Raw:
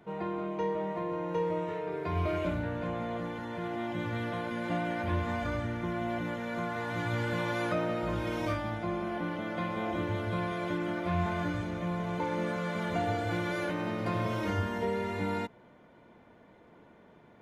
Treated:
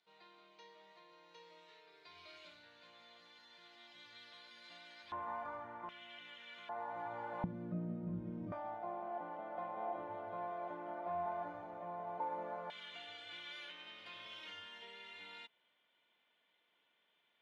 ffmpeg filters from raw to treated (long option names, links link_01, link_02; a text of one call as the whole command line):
ffmpeg -i in.wav -af "asetnsamples=nb_out_samples=441:pad=0,asendcmd='5.12 bandpass f 960;5.89 bandpass f 3100;6.69 bandpass f 820;7.44 bandpass f 190;8.52 bandpass f 780;12.7 bandpass f 3200',bandpass=frequency=4300:width_type=q:width=4.1:csg=0" out.wav